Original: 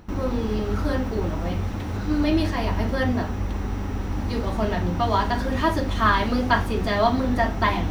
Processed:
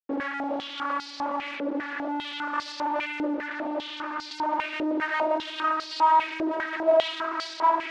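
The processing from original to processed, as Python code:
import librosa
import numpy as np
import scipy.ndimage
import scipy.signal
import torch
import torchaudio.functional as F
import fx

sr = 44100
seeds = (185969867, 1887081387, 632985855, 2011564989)

p1 = fx.vocoder_glide(x, sr, note=61, semitones=3)
p2 = p1 + fx.echo_diffused(p1, sr, ms=1104, feedback_pct=41, wet_db=-13.5, dry=0)
p3 = fx.fuzz(p2, sr, gain_db=40.0, gate_db=-41.0)
p4 = fx.air_absorb(p3, sr, metres=70.0)
y = fx.filter_held_bandpass(p4, sr, hz=5.0, low_hz=480.0, high_hz=4600.0)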